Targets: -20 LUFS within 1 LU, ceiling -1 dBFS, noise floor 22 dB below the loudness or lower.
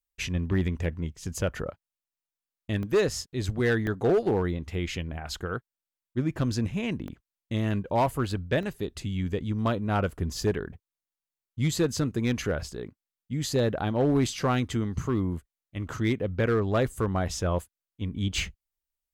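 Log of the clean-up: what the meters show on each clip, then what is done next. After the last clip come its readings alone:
clipped 0.7%; flat tops at -17.5 dBFS; dropouts 5; longest dropout 1.1 ms; loudness -29.0 LUFS; peak -17.5 dBFS; loudness target -20.0 LUFS
-> clip repair -17.5 dBFS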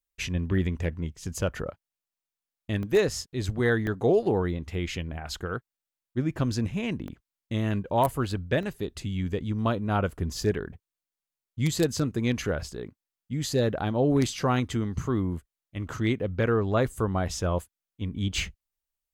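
clipped 0.0%; dropouts 5; longest dropout 1.1 ms
-> interpolate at 2.83/3.87/5.35/7.08/8.63, 1.1 ms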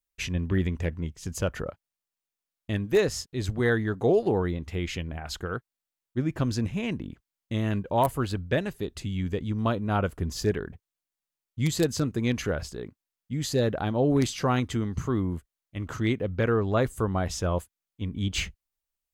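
dropouts 0; loudness -28.5 LUFS; peak -8.5 dBFS; loudness target -20.0 LUFS
-> gain +8.5 dB; limiter -1 dBFS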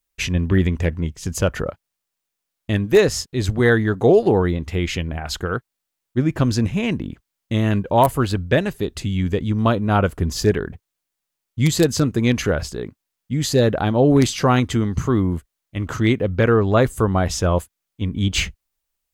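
loudness -20.0 LUFS; peak -1.0 dBFS; noise floor -81 dBFS

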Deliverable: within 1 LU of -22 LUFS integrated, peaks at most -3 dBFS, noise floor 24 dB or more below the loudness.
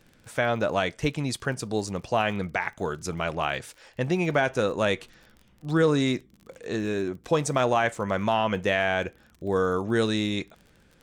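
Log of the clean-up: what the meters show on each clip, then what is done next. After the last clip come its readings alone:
ticks 36/s; loudness -26.5 LUFS; peak -11.0 dBFS; loudness target -22.0 LUFS
-> de-click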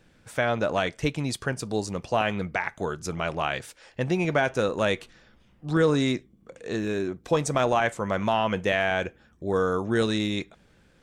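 ticks 0/s; loudness -26.5 LUFS; peak -11.0 dBFS; loudness target -22.0 LUFS
-> gain +4.5 dB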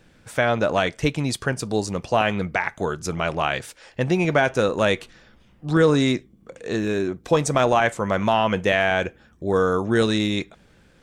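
loudness -22.0 LUFS; peak -6.5 dBFS; noise floor -56 dBFS

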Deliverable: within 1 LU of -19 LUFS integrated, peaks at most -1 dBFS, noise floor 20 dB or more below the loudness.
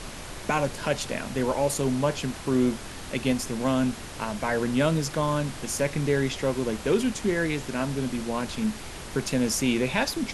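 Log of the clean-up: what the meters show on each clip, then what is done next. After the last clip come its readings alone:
noise floor -39 dBFS; noise floor target -47 dBFS; loudness -27.0 LUFS; peak -9.0 dBFS; loudness target -19.0 LUFS
-> noise print and reduce 8 dB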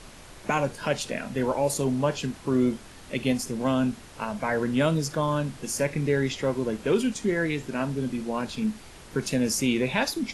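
noise floor -47 dBFS; loudness -27.0 LUFS; peak -9.5 dBFS; loudness target -19.0 LUFS
-> gain +8 dB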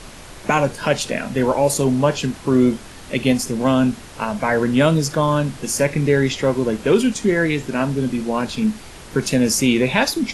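loudness -19.0 LUFS; peak -1.5 dBFS; noise floor -39 dBFS

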